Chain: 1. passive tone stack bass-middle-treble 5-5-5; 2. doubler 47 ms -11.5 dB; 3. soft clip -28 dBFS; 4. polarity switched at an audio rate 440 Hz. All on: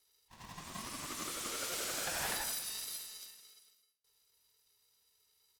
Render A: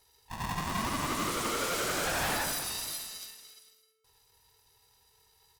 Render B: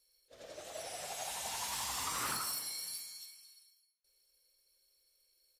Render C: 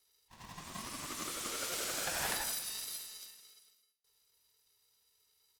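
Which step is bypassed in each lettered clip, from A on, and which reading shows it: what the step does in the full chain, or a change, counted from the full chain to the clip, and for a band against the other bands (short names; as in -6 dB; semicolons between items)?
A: 1, 8 kHz band -8.0 dB; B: 4, 250 Hz band -5.5 dB; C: 3, distortion -22 dB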